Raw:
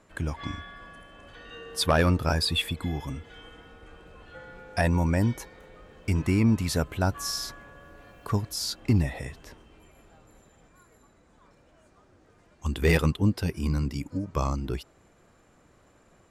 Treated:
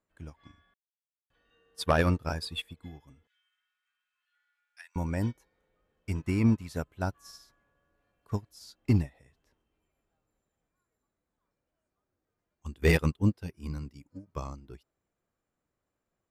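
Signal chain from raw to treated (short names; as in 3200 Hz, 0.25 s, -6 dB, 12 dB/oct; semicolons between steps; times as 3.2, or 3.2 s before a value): 0.74–1.3 mute; 3.27–4.96 HPF 1500 Hz 24 dB/oct; upward expander 2.5:1, over -35 dBFS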